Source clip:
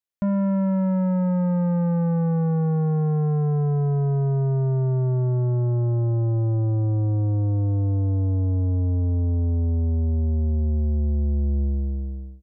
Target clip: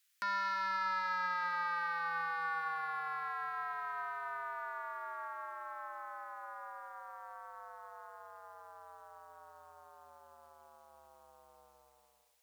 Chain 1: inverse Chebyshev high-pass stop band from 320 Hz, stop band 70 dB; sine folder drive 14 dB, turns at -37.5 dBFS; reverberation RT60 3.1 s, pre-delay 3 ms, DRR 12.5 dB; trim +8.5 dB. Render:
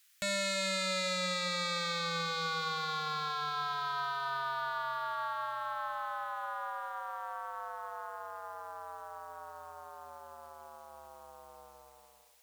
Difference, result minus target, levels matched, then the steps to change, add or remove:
sine folder: distortion +22 dB
change: sine folder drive 5 dB, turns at -37.5 dBFS

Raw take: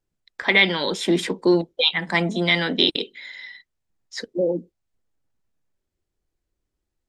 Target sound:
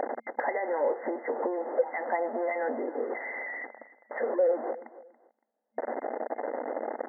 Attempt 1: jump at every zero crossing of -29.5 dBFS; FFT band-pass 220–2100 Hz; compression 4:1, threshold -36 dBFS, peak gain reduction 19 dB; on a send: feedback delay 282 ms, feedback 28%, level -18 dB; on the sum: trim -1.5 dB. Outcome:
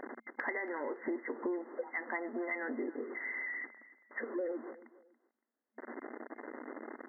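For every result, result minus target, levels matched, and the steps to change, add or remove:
jump at every zero crossing: distortion -8 dB; 500 Hz band -4.0 dB
change: jump at every zero crossing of -20 dBFS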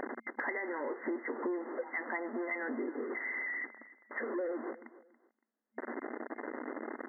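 500 Hz band -3.5 dB
add after compression: high-order bell 640 Hz +13.5 dB 1.1 oct

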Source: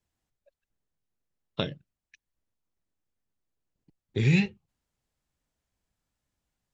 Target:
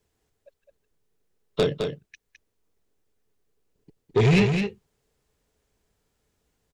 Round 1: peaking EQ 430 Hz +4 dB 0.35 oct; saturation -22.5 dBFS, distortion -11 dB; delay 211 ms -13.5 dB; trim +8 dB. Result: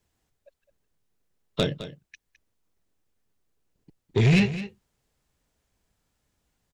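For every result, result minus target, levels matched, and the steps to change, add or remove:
500 Hz band -5.0 dB; echo-to-direct -7.5 dB
change: peaking EQ 430 Hz +13 dB 0.35 oct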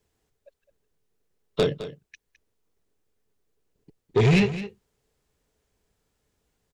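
echo-to-direct -7.5 dB
change: delay 211 ms -6 dB

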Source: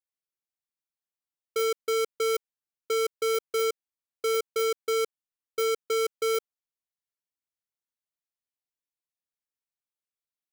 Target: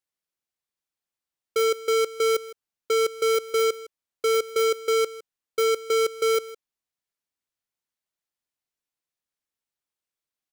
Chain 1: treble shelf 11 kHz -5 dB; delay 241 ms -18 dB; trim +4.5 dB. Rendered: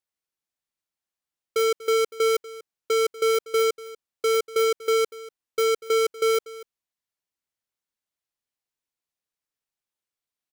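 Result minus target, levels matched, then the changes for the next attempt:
echo 82 ms late
change: delay 159 ms -18 dB

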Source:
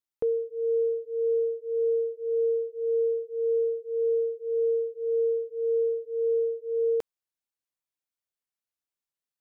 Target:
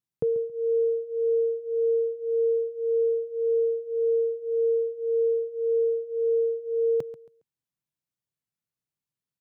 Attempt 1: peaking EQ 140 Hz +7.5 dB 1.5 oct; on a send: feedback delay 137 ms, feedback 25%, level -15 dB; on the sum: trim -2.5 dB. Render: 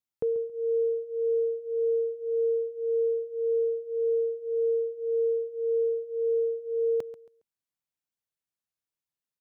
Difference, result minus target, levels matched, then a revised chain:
125 Hz band -7.5 dB
peaking EQ 140 Hz +19 dB 1.5 oct; on a send: feedback delay 137 ms, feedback 25%, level -15 dB; on the sum: trim -2.5 dB

